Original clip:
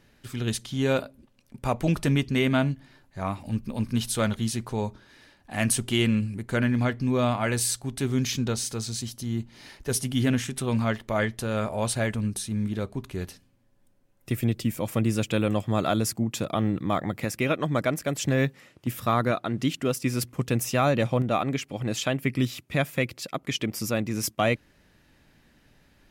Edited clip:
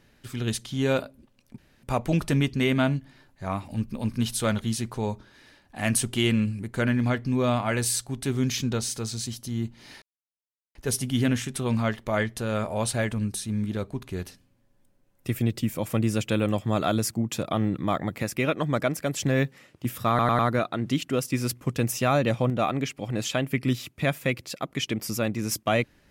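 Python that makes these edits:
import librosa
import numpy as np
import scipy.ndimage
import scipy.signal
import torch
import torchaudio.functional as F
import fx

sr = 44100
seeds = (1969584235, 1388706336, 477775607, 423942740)

y = fx.edit(x, sr, fx.insert_room_tone(at_s=1.58, length_s=0.25),
    fx.insert_silence(at_s=9.77, length_s=0.73),
    fx.stutter(start_s=19.11, slice_s=0.1, count=4), tone=tone)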